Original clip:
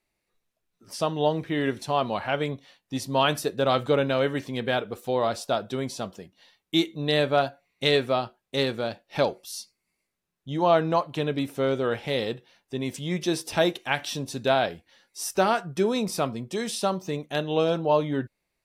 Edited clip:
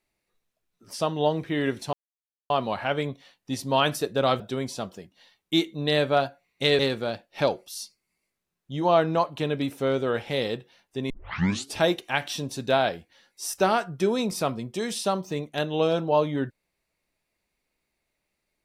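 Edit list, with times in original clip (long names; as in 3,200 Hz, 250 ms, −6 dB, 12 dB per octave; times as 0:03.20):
0:01.93: splice in silence 0.57 s
0:03.83–0:05.61: remove
0:08.00–0:08.56: remove
0:12.87: tape start 0.66 s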